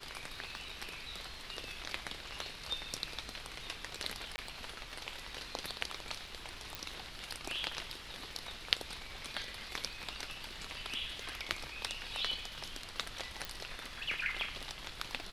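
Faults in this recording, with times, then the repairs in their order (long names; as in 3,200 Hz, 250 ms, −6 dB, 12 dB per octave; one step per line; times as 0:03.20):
surface crackle 21 per second −47 dBFS
0:04.36–0:04.38: drop-out 20 ms
0:06.75: click
0:13.45: click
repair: click removal
repair the gap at 0:04.36, 20 ms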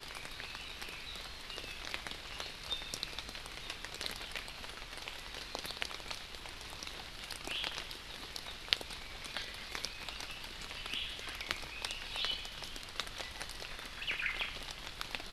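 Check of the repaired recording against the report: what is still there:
none of them is left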